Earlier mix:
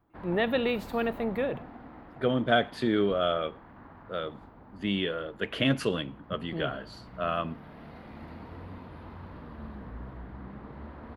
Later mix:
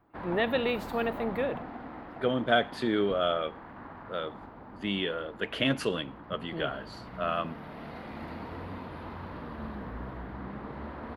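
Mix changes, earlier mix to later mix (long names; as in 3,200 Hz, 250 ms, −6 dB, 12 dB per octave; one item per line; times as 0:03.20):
background +6.5 dB
master: add low-shelf EQ 190 Hz −7 dB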